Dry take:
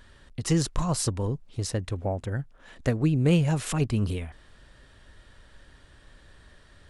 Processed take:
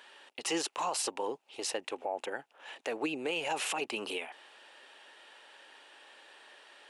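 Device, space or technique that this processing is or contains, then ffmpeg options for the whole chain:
laptop speaker: -af "highpass=frequency=370:width=0.5412,highpass=frequency=370:width=1.3066,equalizer=frequency=840:width_type=o:width=0.32:gain=10.5,equalizer=frequency=2700:width_type=o:width=0.55:gain=10.5,alimiter=limit=-24dB:level=0:latency=1:release=39"

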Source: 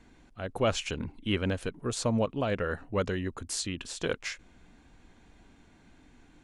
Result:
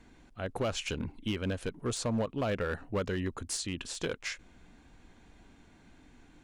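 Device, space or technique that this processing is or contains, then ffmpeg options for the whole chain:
limiter into clipper: -af "alimiter=limit=-21dB:level=0:latency=1:release=206,asoftclip=type=hard:threshold=-25.5dB"

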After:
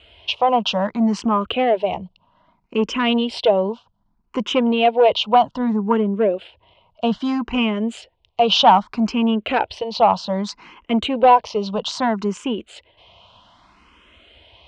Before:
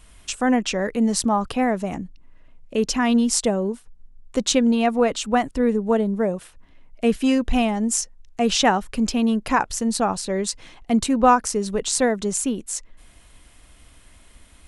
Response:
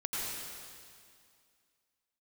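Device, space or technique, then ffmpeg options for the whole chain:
barber-pole phaser into a guitar amplifier: -filter_complex "[0:a]asplit=2[link_01][link_02];[link_02]afreqshift=0.63[link_03];[link_01][link_03]amix=inputs=2:normalize=1,asoftclip=type=tanh:threshold=-14.5dB,highpass=100,equalizer=frequency=140:width_type=q:width=4:gain=-9,equalizer=frequency=270:width_type=q:width=4:gain=-7,equalizer=frequency=640:width_type=q:width=4:gain=4,equalizer=frequency=970:width_type=q:width=4:gain=8,equalizer=frequency=1800:width_type=q:width=4:gain=-8,equalizer=frequency=3000:width_type=q:width=4:gain=8,lowpass=frequency=4200:width=0.5412,lowpass=frequency=4200:width=1.3066,asettb=1/sr,asplit=3[link_04][link_05][link_06];[link_04]atrim=end=4.454[link_07];[link_05]atrim=start=4.45:end=4.99,asetpts=PTS-STARTPTS,afade=type=in:duration=0.004:curve=qsin,afade=type=out:start_time=0.536:duration=0.004:curve=qsin,equalizer=frequency=9200:width=0.51:gain=-5.5[link_08];[link_06]atrim=start=4.986[link_09];[link_07][link_08]acrossfade=duration=0.004:curve1=hsin:curve2=qsin[link_10];[link_10][link_09]acrossfade=duration=0.004:curve1=qsin:curve2=hsin,volume=7dB"

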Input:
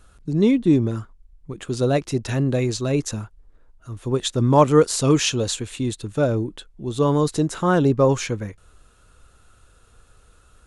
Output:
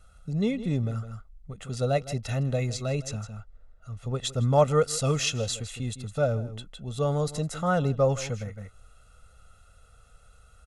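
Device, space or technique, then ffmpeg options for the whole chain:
ducked delay: -filter_complex "[0:a]asettb=1/sr,asplit=3[link_01][link_02][link_03];[link_01]atrim=end=3.064[link_04];[link_02]atrim=start=3.06:end=4.24,asetpts=PTS-STARTPTS,afade=type=in:duration=0.004:curve=qsin,afade=type=out:start_time=1.176:duration=0.004:curve=qsin,lowpass=8100[link_05];[link_03]atrim=start=4.236[link_06];[link_04][link_05]acrossfade=duration=0.004:curve1=hsin:curve2=qsin[link_07];[link_07][link_06]acrossfade=duration=0.004:curve1=qsin:curve2=hsin,aecho=1:1:1.5:0.84,asplit=3[link_08][link_09][link_10];[link_09]adelay=159,volume=-2.5dB[link_11];[link_10]apad=whole_len=477261[link_12];[link_11][link_12]sidechaincompress=threshold=-34dB:ratio=8:attack=7.3:release=199[link_13];[link_08][link_13]amix=inputs=2:normalize=0,volume=-8dB"

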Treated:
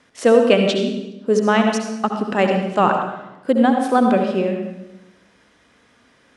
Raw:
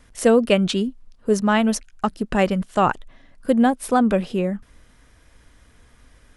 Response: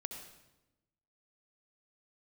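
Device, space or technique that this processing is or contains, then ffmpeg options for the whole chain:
supermarket ceiling speaker: -filter_complex "[0:a]highpass=210,lowpass=6100[link_01];[1:a]atrim=start_sample=2205[link_02];[link_01][link_02]afir=irnorm=-1:irlink=0,volume=5dB"

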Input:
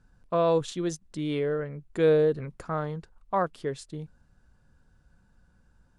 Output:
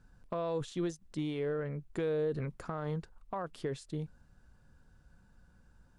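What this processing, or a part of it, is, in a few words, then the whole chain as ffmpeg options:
de-esser from a sidechain: -filter_complex "[0:a]asplit=2[link_01][link_02];[link_02]highpass=frequency=5300:poles=1,apad=whole_len=263784[link_03];[link_01][link_03]sidechaincompress=threshold=-51dB:ratio=4:attack=2.6:release=48"

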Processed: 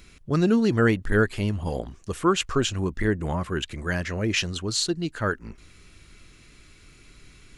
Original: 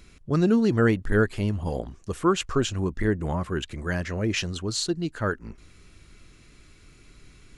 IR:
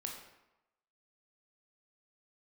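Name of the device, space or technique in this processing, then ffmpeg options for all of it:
presence and air boost: -af "equalizer=frequency=2700:width_type=o:width=2:gain=3.5,highshelf=frequency=9600:gain=5.5"

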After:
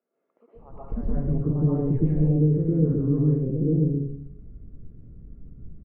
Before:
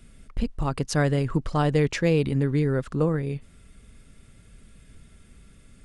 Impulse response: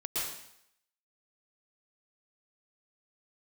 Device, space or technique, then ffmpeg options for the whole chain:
television next door: -filter_complex "[0:a]acompressor=threshold=-25dB:ratio=3,lowpass=360[link_01];[1:a]atrim=start_sample=2205[link_02];[link_01][link_02]afir=irnorm=-1:irlink=0,lowpass=frequency=1500:poles=1,acrossover=split=600[link_03][link_04];[link_03]adelay=550[link_05];[link_05][link_04]amix=inputs=2:normalize=0,volume=4dB"

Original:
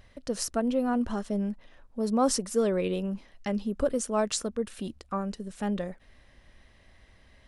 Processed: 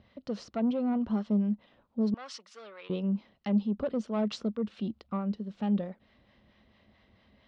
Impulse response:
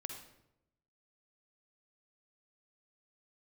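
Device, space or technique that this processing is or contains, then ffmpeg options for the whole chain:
guitar amplifier with harmonic tremolo: -filter_complex "[0:a]acrossover=split=590[link_01][link_02];[link_01]aeval=exprs='val(0)*(1-0.5/2+0.5/2*cos(2*PI*4.5*n/s))':channel_layout=same[link_03];[link_02]aeval=exprs='val(0)*(1-0.5/2-0.5/2*cos(2*PI*4.5*n/s))':channel_layout=same[link_04];[link_03][link_04]amix=inputs=2:normalize=0,asoftclip=type=tanh:threshold=-24.5dB,highpass=88,equalizer=frequency=210:width_type=q:width=4:gain=8,equalizer=frequency=1700:width_type=q:width=4:gain=-7,equalizer=frequency=2400:width_type=q:width=4:gain=-3,lowpass=frequency=4200:width=0.5412,lowpass=frequency=4200:width=1.3066,asettb=1/sr,asplit=3[link_05][link_06][link_07];[link_05]atrim=end=2.144[link_08];[link_06]atrim=start=2.14:end=2.9,asetpts=PTS-STARTPTS,afade=type=in:duration=0.004:curve=qsin,afade=type=out:start_time=0.756:duration=0.004:curve=qsin,highpass=1400[link_09];[link_07]atrim=start=2.896[link_10];[link_08][link_09]acrossfade=duration=0.004:curve1=hsin:curve2=qsin[link_11];[link_11][link_10]acrossfade=duration=0.004:curve1=qsin:curve2=hsin"

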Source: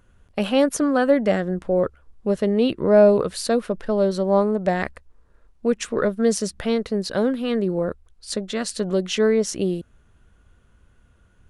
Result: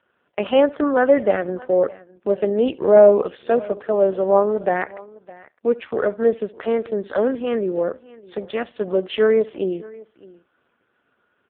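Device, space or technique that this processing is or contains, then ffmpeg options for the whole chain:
satellite phone: -filter_complex "[0:a]asplit=3[link_01][link_02][link_03];[link_01]afade=type=out:start_time=5.9:duration=0.02[link_04];[link_02]adynamicequalizer=threshold=0.0141:dfrequency=210:dqfactor=7.9:tfrequency=210:tqfactor=7.9:attack=5:release=100:ratio=0.375:range=2.5:mode=cutabove:tftype=bell,afade=type=in:start_time=5.9:duration=0.02,afade=type=out:start_time=6.3:duration=0.02[link_05];[link_03]afade=type=in:start_time=6.3:duration=0.02[link_06];[link_04][link_05][link_06]amix=inputs=3:normalize=0,highpass=75,asplit=2[link_07][link_08];[link_08]adelay=68,lowpass=frequency=3600:poles=1,volume=-21dB,asplit=2[link_09][link_10];[link_10]adelay=68,lowpass=frequency=3600:poles=1,volume=0.29[link_11];[link_07][link_09][link_11]amix=inputs=3:normalize=0,asettb=1/sr,asplit=3[link_12][link_13][link_14];[link_12]atrim=end=7.884[link_15];[link_13]atrim=start=7.88:end=8.98,asetpts=PTS-STARTPTS,afade=type=in:duration=0.004:curve=qsin,afade=type=out:start_time=1.096:duration=0.004:curve=qsin,agate=range=-28dB:threshold=-49dB:ratio=16:detection=peak[link_16];[link_14]atrim=start=8.976[link_17];[link_15][link_16]acrossfade=duration=0.004:curve1=hsin:curve2=qsin[link_18];[link_18][link_17]acrossfade=duration=0.004:curve1=qsin:curve2=hsin,highpass=350,lowpass=3300,aecho=1:1:610:0.0841,volume=4.5dB" -ar 8000 -c:a libopencore_amrnb -b:a 4750

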